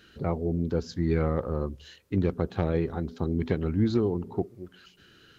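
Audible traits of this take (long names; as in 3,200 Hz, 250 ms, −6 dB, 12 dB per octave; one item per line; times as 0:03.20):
background noise floor −58 dBFS
spectral slope −8.0 dB per octave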